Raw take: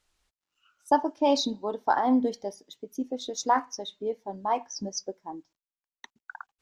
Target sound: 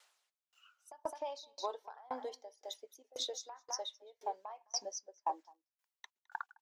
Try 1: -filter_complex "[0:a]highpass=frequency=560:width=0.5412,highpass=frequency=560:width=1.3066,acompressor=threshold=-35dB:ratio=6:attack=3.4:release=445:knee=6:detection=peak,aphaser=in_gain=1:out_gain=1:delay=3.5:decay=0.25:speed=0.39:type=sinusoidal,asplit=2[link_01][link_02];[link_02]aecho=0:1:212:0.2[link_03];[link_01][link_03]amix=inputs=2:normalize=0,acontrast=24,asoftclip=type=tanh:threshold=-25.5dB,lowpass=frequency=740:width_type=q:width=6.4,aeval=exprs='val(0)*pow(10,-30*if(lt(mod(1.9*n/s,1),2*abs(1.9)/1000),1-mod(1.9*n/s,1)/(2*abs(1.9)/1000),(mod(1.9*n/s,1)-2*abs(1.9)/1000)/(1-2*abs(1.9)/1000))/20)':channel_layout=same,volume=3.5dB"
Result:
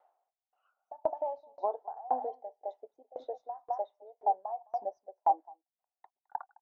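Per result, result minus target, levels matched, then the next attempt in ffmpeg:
soft clipping: distortion +12 dB; 1,000 Hz band +3.0 dB
-filter_complex "[0:a]highpass=frequency=560:width=0.5412,highpass=frequency=560:width=1.3066,acompressor=threshold=-35dB:ratio=6:attack=3.4:release=445:knee=6:detection=peak,aphaser=in_gain=1:out_gain=1:delay=3.5:decay=0.25:speed=0.39:type=sinusoidal,asplit=2[link_01][link_02];[link_02]aecho=0:1:212:0.2[link_03];[link_01][link_03]amix=inputs=2:normalize=0,acontrast=24,asoftclip=type=tanh:threshold=-18dB,lowpass=frequency=740:width_type=q:width=6.4,aeval=exprs='val(0)*pow(10,-30*if(lt(mod(1.9*n/s,1),2*abs(1.9)/1000),1-mod(1.9*n/s,1)/(2*abs(1.9)/1000),(mod(1.9*n/s,1)-2*abs(1.9)/1000)/(1-2*abs(1.9)/1000))/20)':channel_layout=same,volume=3.5dB"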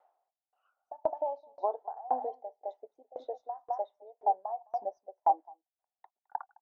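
1,000 Hz band +3.0 dB
-filter_complex "[0:a]highpass=frequency=560:width=0.5412,highpass=frequency=560:width=1.3066,acompressor=threshold=-35dB:ratio=6:attack=3.4:release=445:knee=6:detection=peak,aphaser=in_gain=1:out_gain=1:delay=3.5:decay=0.25:speed=0.39:type=sinusoidal,asplit=2[link_01][link_02];[link_02]aecho=0:1:212:0.2[link_03];[link_01][link_03]amix=inputs=2:normalize=0,acontrast=24,asoftclip=type=tanh:threshold=-18dB,aeval=exprs='val(0)*pow(10,-30*if(lt(mod(1.9*n/s,1),2*abs(1.9)/1000),1-mod(1.9*n/s,1)/(2*abs(1.9)/1000),(mod(1.9*n/s,1)-2*abs(1.9)/1000)/(1-2*abs(1.9)/1000))/20)':channel_layout=same,volume=3.5dB"

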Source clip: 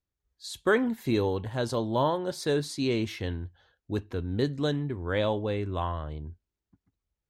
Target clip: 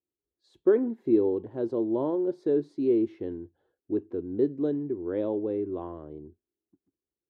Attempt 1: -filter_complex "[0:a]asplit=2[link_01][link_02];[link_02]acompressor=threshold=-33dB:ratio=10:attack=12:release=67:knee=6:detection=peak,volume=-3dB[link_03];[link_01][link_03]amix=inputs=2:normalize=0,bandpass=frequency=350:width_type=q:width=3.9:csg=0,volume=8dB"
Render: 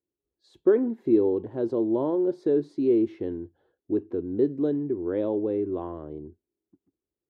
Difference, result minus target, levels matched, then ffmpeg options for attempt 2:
downward compressor: peak gain reduction +13.5 dB
-af "bandpass=frequency=350:width_type=q:width=3.9:csg=0,volume=8dB"

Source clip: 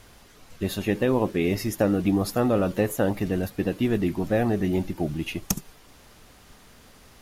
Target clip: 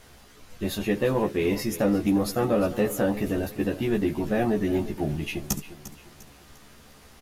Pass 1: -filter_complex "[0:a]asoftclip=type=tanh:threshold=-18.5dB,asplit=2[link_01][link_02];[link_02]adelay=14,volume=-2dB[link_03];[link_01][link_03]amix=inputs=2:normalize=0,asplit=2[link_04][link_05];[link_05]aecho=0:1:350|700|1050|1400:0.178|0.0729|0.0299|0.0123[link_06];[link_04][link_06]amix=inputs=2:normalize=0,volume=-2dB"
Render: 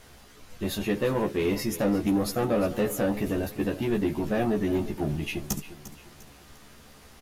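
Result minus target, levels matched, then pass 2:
soft clipping: distortion +9 dB
-filter_complex "[0:a]asoftclip=type=tanh:threshold=-12dB,asplit=2[link_01][link_02];[link_02]adelay=14,volume=-2dB[link_03];[link_01][link_03]amix=inputs=2:normalize=0,asplit=2[link_04][link_05];[link_05]aecho=0:1:350|700|1050|1400:0.178|0.0729|0.0299|0.0123[link_06];[link_04][link_06]amix=inputs=2:normalize=0,volume=-2dB"

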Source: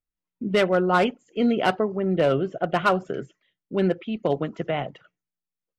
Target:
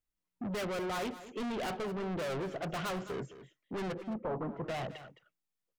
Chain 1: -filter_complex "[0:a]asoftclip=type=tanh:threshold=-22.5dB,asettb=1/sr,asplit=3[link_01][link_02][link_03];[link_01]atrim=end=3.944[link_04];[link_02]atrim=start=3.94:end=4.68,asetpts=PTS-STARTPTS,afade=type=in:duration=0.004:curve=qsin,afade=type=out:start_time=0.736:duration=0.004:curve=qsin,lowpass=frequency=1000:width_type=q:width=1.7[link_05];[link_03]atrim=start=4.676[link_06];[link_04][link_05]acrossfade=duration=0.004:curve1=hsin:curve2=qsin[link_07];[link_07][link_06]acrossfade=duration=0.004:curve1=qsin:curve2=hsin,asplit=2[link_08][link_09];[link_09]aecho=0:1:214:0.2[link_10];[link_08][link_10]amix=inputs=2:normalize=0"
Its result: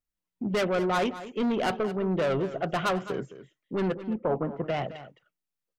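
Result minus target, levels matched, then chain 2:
soft clipping: distortion −6 dB
-filter_complex "[0:a]asoftclip=type=tanh:threshold=-34.5dB,asettb=1/sr,asplit=3[link_01][link_02][link_03];[link_01]atrim=end=3.944[link_04];[link_02]atrim=start=3.94:end=4.68,asetpts=PTS-STARTPTS,afade=type=in:duration=0.004:curve=qsin,afade=type=out:start_time=0.736:duration=0.004:curve=qsin,lowpass=frequency=1000:width_type=q:width=1.7[link_05];[link_03]atrim=start=4.676[link_06];[link_04][link_05]acrossfade=duration=0.004:curve1=hsin:curve2=qsin[link_07];[link_07][link_06]acrossfade=duration=0.004:curve1=qsin:curve2=hsin,asplit=2[link_08][link_09];[link_09]aecho=0:1:214:0.2[link_10];[link_08][link_10]amix=inputs=2:normalize=0"

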